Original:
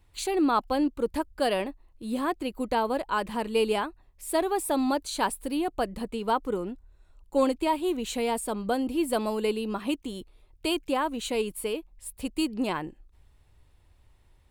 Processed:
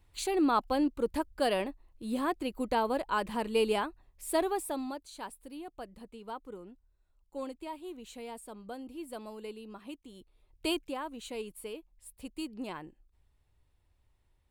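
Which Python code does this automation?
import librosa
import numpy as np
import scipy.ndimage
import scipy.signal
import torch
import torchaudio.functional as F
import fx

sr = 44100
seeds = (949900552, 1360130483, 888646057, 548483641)

y = fx.gain(x, sr, db=fx.line((4.45, -3.0), (5.04, -15.5), (10.09, -15.5), (10.7, -3.0), (10.95, -11.0)))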